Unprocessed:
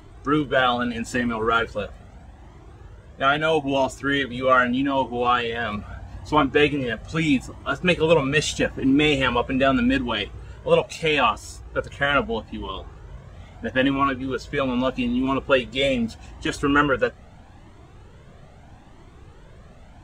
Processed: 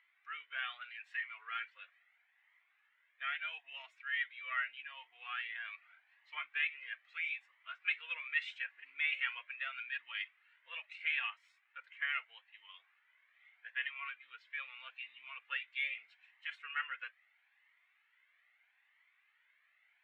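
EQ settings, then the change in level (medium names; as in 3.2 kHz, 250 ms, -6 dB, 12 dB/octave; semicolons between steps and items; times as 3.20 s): ladder high-pass 1.9 kHz, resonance 65%; distance through air 470 m; -1.5 dB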